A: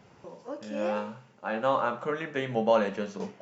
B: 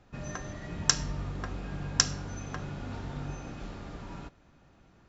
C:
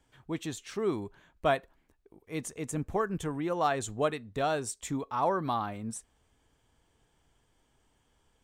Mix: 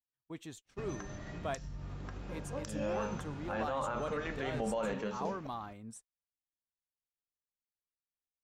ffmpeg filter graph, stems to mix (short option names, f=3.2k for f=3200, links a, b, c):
-filter_complex "[0:a]adelay=2050,volume=-3.5dB[a];[1:a]acrossover=split=160[b][c];[c]acompressor=threshold=-37dB:ratio=6[d];[b][d]amix=inputs=2:normalize=0,acompressor=threshold=-43dB:ratio=4,adelay=650,volume=1.5dB[e];[2:a]volume=-10.5dB[f];[a][e][f]amix=inputs=3:normalize=0,agate=range=-31dB:threshold=-51dB:ratio=16:detection=peak,alimiter=level_in=2dB:limit=-24dB:level=0:latency=1:release=43,volume=-2dB"